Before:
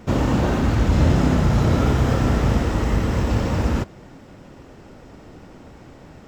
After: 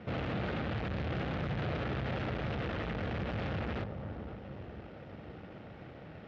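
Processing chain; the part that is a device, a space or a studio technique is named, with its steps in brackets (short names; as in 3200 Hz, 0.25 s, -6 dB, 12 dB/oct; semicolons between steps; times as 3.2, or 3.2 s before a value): analogue delay pedal into a guitar amplifier (analogue delay 0.513 s, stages 4096, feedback 47%, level -16 dB; tube stage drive 31 dB, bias 0.6; speaker cabinet 88–3600 Hz, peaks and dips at 260 Hz -7 dB, 380 Hz -3 dB, 990 Hz -8 dB)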